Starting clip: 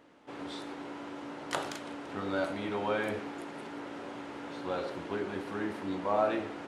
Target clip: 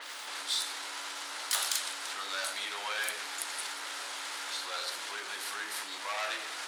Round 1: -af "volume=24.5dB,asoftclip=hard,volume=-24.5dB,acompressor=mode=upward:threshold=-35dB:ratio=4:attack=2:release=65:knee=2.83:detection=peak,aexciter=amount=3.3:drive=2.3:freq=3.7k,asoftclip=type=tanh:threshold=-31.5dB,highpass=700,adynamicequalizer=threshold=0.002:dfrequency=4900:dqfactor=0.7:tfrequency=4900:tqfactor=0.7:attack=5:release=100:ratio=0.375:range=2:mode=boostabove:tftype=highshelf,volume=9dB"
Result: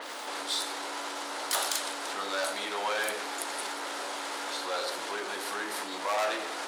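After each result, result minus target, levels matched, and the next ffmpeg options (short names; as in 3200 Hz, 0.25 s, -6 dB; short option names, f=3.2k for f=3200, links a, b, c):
overloaded stage: distortion +18 dB; 500 Hz band +9.5 dB
-af "volume=18dB,asoftclip=hard,volume=-18dB,acompressor=mode=upward:threshold=-35dB:ratio=4:attack=2:release=65:knee=2.83:detection=peak,aexciter=amount=3.3:drive=2.3:freq=3.7k,asoftclip=type=tanh:threshold=-31.5dB,highpass=700,adynamicequalizer=threshold=0.002:dfrequency=4900:dqfactor=0.7:tfrequency=4900:tqfactor=0.7:attack=5:release=100:ratio=0.375:range=2:mode=boostabove:tftype=highshelf,volume=9dB"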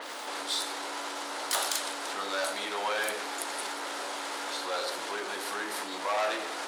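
500 Hz band +9.5 dB
-af "volume=18dB,asoftclip=hard,volume=-18dB,acompressor=mode=upward:threshold=-35dB:ratio=4:attack=2:release=65:knee=2.83:detection=peak,aexciter=amount=3.3:drive=2.3:freq=3.7k,asoftclip=type=tanh:threshold=-31.5dB,highpass=1.5k,adynamicequalizer=threshold=0.002:dfrequency=4900:dqfactor=0.7:tfrequency=4900:tqfactor=0.7:attack=5:release=100:ratio=0.375:range=2:mode=boostabove:tftype=highshelf,volume=9dB"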